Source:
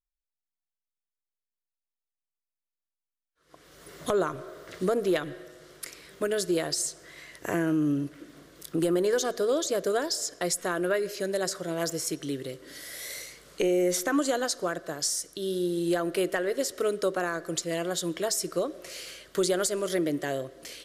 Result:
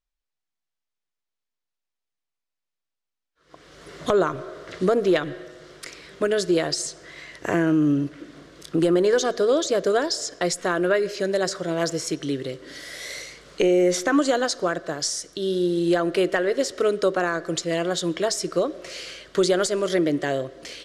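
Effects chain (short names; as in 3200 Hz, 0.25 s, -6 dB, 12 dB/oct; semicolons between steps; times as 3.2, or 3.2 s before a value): LPF 6000 Hz 12 dB/oct; gain +6 dB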